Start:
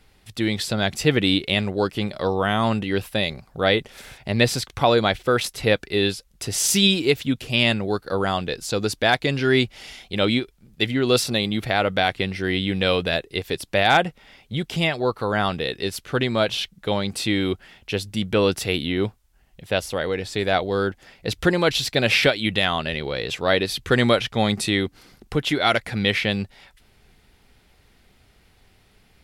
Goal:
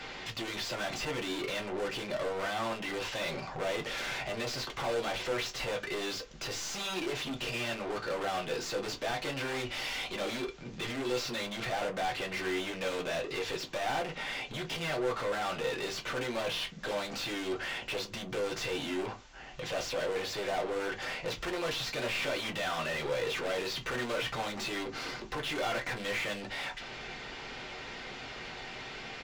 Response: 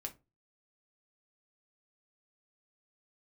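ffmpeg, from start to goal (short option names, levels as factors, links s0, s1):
-filter_complex "[0:a]aeval=exprs='(tanh(39.8*val(0)+0.3)-tanh(0.3))/39.8':c=same,aresample=16000,aresample=44100,asplit=2[s0][s1];[s1]highpass=f=720:p=1,volume=35.5,asoftclip=type=tanh:threshold=0.0501[s2];[s0][s2]amix=inputs=2:normalize=0,lowpass=f=3000:p=1,volume=0.501,acrossover=split=350[s3][s4];[s3]alimiter=level_in=5.62:limit=0.0631:level=0:latency=1,volume=0.178[s5];[s5][s4]amix=inputs=2:normalize=0[s6];[1:a]atrim=start_sample=2205,asetrate=52920,aresample=44100[s7];[s6][s7]afir=irnorm=-1:irlink=0,areverse,acompressor=mode=upward:threshold=0.00282:ratio=2.5,areverse,volume=1.33"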